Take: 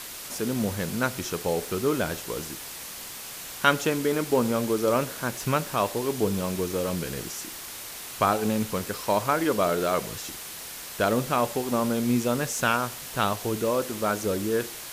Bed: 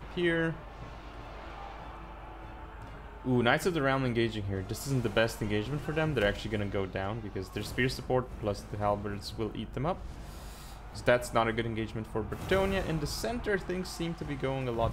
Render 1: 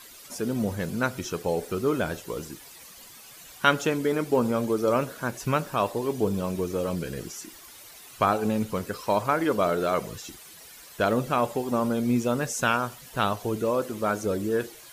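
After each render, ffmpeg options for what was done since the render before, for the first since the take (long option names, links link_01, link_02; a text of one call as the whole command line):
ffmpeg -i in.wav -af "afftdn=noise_reduction=12:noise_floor=-39" out.wav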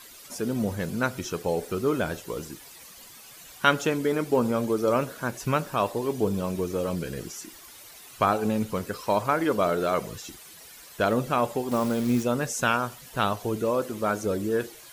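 ffmpeg -i in.wav -filter_complex "[0:a]asettb=1/sr,asplit=3[link_01][link_02][link_03];[link_01]atrim=end=11.714[link_04];[link_02]atrim=start=11.71:end=12.23,asetpts=PTS-STARTPTS,afade=type=in:duration=0.004:curve=qsin,afade=type=out:start_time=0.516:duration=0.004:curve=qsin,acrusher=bits=7:dc=4:mix=0:aa=0.000001[link_05];[link_03]atrim=start=12.226[link_06];[link_04][link_05]acrossfade=duration=0.004:curve1=hsin:curve2=qsin[link_07];[link_07][link_06]acrossfade=duration=0.004:curve1=qsin:curve2=hsin" out.wav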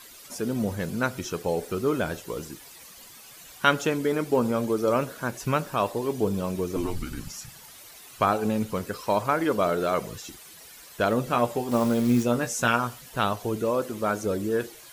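ffmpeg -i in.wav -filter_complex "[0:a]asettb=1/sr,asplit=3[link_01][link_02][link_03];[link_01]atrim=end=6.764[link_04];[link_02]atrim=start=6.76:end=7.76,asetpts=PTS-STARTPTS,afade=type=in:duration=0.004:curve=qsin,afade=type=out:start_time=0.996:duration=0.004:curve=qsin,afreqshift=-190[link_05];[link_03]atrim=start=7.756[link_06];[link_04][link_05]acrossfade=duration=0.004:curve1=hsin:curve2=qsin[link_07];[link_07][link_06]acrossfade=duration=0.004:curve1=qsin:curve2=hsin,asettb=1/sr,asplit=3[link_08][link_09][link_10];[link_08]atrim=end=11.264[link_11];[link_09]atrim=start=11.26:end=13.02,asetpts=PTS-STARTPTS,afade=type=in:duration=0.004:curve=qsin,afade=type=out:start_time=1.756:duration=0.004:curve=qsin,asplit=2[link_12][link_13];[link_13]adelay=17,volume=-7dB[link_14];[link_12][link_14]amix=inputs=2:normalize=0,atrim=end_sample=77616[link_15];[link_10]atrim=start=13.016[link_16];[link_11][link_15]acrossfade=duration=0.004:curve1=hsin:curve2=qsin[link_17];[link_17][link_16]acrossfade=duration=0.004:curve1=qsin:curve2=hsin" out.wav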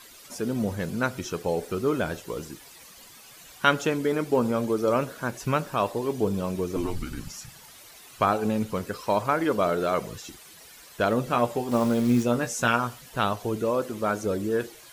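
ffmpeg -i in.wav -af "highshelf=frequency=9000:gain=-4" out.wav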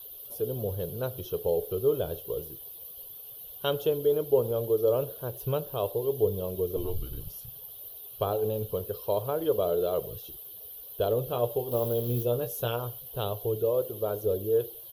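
ffmpeg -i in.wav -af "firequalizer=gain_entry='entry(120,0);entry(230,-18);entry(430,3);entry(830,-10);entry(2100,-27);entry(3100,-2);entry(4900,-14);entry(7700,-22);entry(12000,12)':delay=0.05:min_phase=1" out.wav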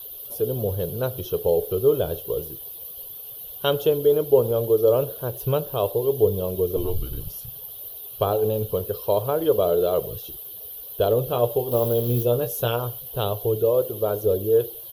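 ffmpeg -i in.wav -af "volume=6.5dB" out.wav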